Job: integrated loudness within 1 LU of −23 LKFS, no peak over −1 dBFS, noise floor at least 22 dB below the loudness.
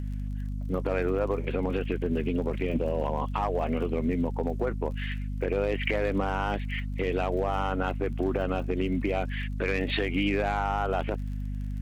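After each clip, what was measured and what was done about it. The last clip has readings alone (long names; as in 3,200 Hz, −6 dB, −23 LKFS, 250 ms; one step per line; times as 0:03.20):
crackle rate 34 per second; mains hum 50 Hz; hum harmonics up to 250 Hz; level of the hum −30 dBFS; integrated loudness −29.5 LKFS; sample peak −15.0 dBFS; target loudness −23.0 LKFS
→ click removal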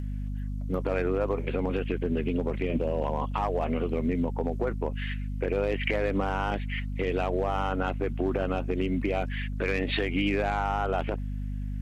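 crackle rate 0.085 per second; mains hum 50 Hz; hum harmonics up to 250 Hz; level of the hum −30 dBFS
→ mains-hum notches 50/100/150/200/250 Hz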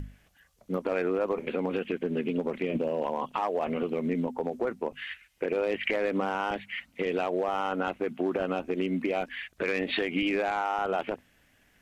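mains hum none found; integrated loudness −30.5 LKFS; sample peak −16.0 dBFS; target loudness −23.0 LKFS
→ level +7.5 dB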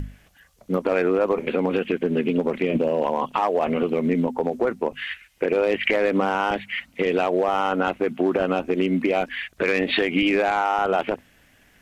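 integrated loudness −23.0 LKFS; sample peak −8.5 dBFS; background noise floor −57 dBFS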